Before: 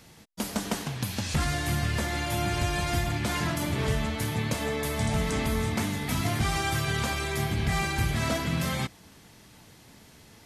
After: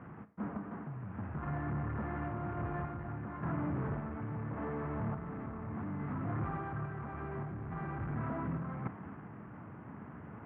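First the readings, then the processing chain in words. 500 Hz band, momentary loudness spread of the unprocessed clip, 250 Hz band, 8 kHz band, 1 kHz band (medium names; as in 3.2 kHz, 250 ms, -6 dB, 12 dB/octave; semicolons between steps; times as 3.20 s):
-10.5 dB, 4 LU, -7.5 dB, under -40 dB, -9.5 dB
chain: CVSD coder 16 kbps; hard clipper -31.5 dBFS, distortion -7 dB; reverse; compression 10:1, threshold -42 dBFS, peak gain reduction 9.5 dB; reverse; low-pass 1.3 kHz 24 dB/octave; band-stop 900 Hz, Q 26; random-step tremolo; high-pass 110 Hz 12 dB/octave; peaking EQ 540 Hz -8 dB 1.3 oct; Schroeder reverb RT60 0.48 s, combs from 27 ms, DRR 13 dB; trim +11.5 dB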